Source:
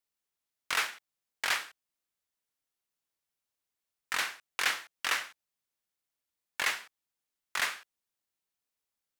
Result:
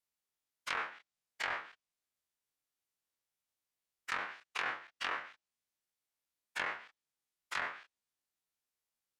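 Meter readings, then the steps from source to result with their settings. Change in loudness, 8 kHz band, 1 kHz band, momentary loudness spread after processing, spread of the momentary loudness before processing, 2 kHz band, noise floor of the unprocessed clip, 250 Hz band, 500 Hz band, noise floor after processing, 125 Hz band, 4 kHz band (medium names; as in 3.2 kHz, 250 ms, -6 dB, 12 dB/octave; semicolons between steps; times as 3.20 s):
-7.5 dB, -16.0 dB, -3.0 dB, 12 LU, 14 LU, -6.0 dB, under -85 dBFS, -1.5 dB, -1.5 dB, under -85 dBFS, no reading, -11.0 dB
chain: every event in the spectrogram widened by 60 ms; low-pass that closes with the level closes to 1.4 kHz, closed at -24 dBFS; trim -6.5 dB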